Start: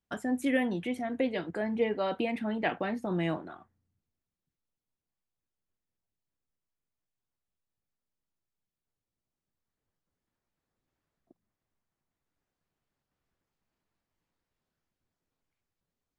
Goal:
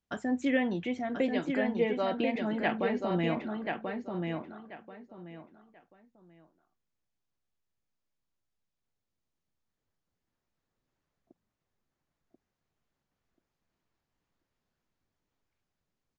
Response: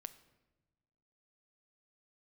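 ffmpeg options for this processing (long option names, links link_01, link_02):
-filter_complex "[0:a]asplit=2[link_01][link_02];[link_02]adelay=1036,lowpass=frequency=4400:poles=1,volume=-4dB,asplit=2[link_03][link_04];[link_04]adelay=1036,lowpass=frequency=4400:poles=1,volume=0.24,asplit=2[link_05][link_06];[link_06]adelay=1036,lowpass=frequency=4400:poles=1,volume=0.24[link_07];[link_03][link_05][link_07]amix=inputs=3:normalize=0[link_08];[link_01][link_08]amix=inputs=2:normalize=0,aresample=16000,aresample=44100"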